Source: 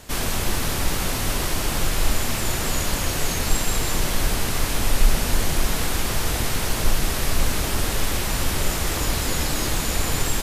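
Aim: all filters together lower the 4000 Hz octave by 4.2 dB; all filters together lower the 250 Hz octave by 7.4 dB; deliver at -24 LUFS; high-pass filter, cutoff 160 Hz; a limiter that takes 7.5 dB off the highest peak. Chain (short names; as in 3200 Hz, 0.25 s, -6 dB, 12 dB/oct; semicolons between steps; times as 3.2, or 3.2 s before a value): HPF 160 Hz; bell 250 Hz -9 dB; bell 4000 Hz -5.5 dB; gain +6.5 dB; limiter -16 dBFS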